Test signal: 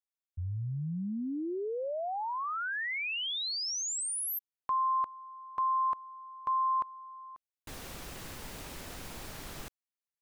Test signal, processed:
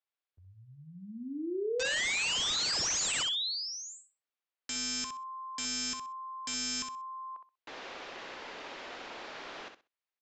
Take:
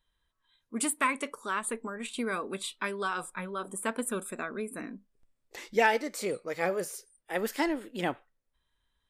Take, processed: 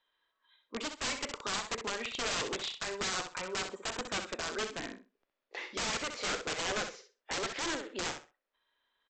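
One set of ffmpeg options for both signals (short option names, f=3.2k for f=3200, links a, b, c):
-filter_complex "[0:a]lowshelf=f=130:g=-5.5,alimiter=limit=-23dB:level=0:latency=1:release=217,acrossover=split=310 4500:gain=0.0708 1 0.0708[a][b][c];[a][b][c]amix=inputs=3:normalize=0,aresample=16000,aeval=exprs='(mod(44.7*val(0)+1,2)-1)/44.7':c=same,aresample=44100,aecho=1:1:64|128|192:0.398|0.0756|0.0144,volume=4dB"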